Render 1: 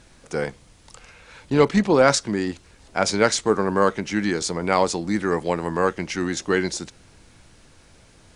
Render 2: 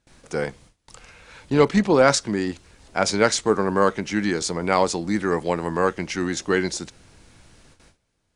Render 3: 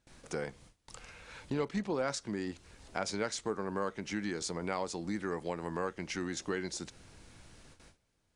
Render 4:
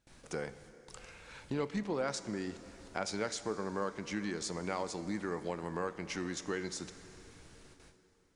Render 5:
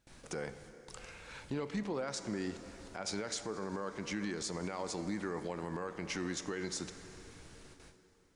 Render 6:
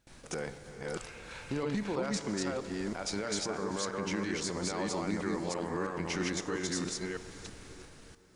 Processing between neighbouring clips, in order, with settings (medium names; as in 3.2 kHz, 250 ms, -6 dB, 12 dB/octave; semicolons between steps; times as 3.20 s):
gate with hold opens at -41 dBFS
compression 2.5:1, threshold -32 dBFS, peak gain reduction 14 dB; trim -4.5 dB
plate-style reverb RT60 3.8 s, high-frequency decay 0.85×, DRR 12 dB; trim -1.5 dB
peak limiter -30 dBFS, peak gain reduction 11 dB; trim +2 dB
chunks repeated in reverse 326 ms, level -1 dB; trim +2.5 dB